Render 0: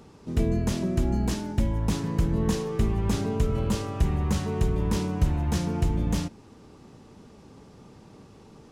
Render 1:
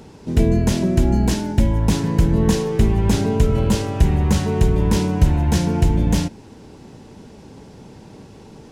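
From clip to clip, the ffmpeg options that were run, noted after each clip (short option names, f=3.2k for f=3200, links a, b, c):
-af "bandreject=f=1.2k:w=6.4,volume=8.5dB"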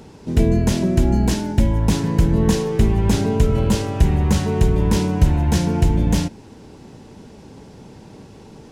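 -af anull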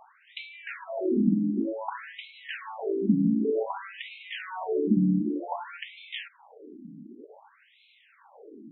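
-af "afftfilt=real='re*between(b*sr/1024,220*pow(3000/220,0.5+0.5*sin(2*PI*0.54*pts/sr))/1.41,220*pow(3000/220,0.5+0.5*sin(2*PI*0.54*pts/sr))*1.41)':imag='im*between(b*sr/1024,220*pow(3000/220,0.5+0.5*sin(2*PI*0.54*pts/sr))/1.41,220*pow(3000/220,0.5+0.5*sin(2*PI*0.54*pts/sr))*1.41)':win_size=1024:overlap=0.75"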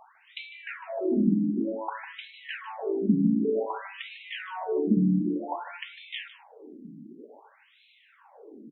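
-filter_complex "[0:a]asplit=2[a][b];[b]adelay=151.6,volume=-14dB,highshelf=f=4k:g=-3.41[c];[a][c]amix=inputs=2:normalize=0"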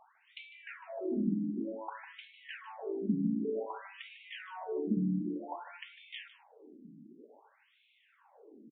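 -af "aresample=8000,aresample=44100,volume=-8.5dB"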